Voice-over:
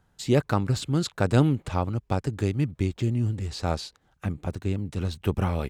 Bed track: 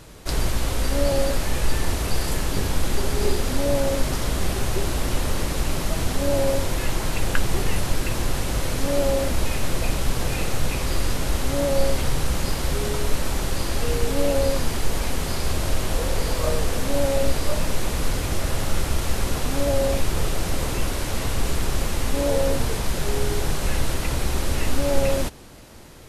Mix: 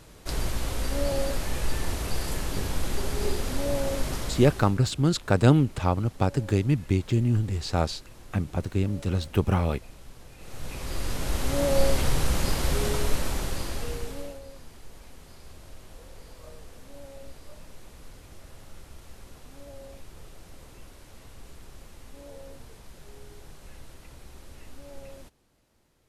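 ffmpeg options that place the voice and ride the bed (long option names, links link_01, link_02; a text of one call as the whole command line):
ffmpeg -i stem1.wav -i stem2.wav -filter_complex "[0:a]adelay=4100,volume=2dB[link_01];[1:a]volume=16.5dB,afade=type=out:start_time=4.15:duration=0.65:silence=0.125893,afade=type=in:start_time=10.38:duration=1.41:silence=0.0749894,afade=type=out:start_time=12.86:duration=1.54:silence=0.0794328[link_02];[link_01][link_02]amix=inputs=2:normalize=0" out.wav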